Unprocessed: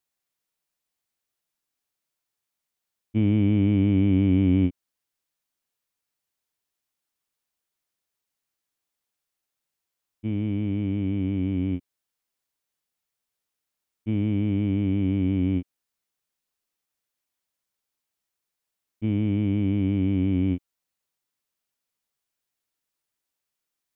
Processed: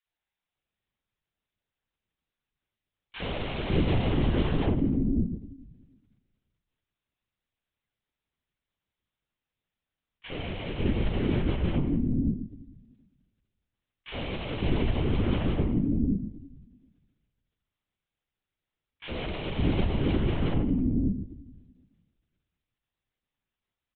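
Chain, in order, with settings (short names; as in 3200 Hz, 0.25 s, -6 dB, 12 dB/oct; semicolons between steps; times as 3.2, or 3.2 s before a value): spectral whitening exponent 0.6; HPF 98 Hz 24 dB/oct; comb 6.3 ms, depth 44%; hard clip -26 dBFS, distortion -6 dB; bell 130 Hz +13.5 dB 0.73 oct; three bands offset in time highs, mids, lows 60/550 ms, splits 340/1100 Hz; shoebox room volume 320 m³, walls mixed, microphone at 0.52 m; LPC vocoder at 8 kHz whisper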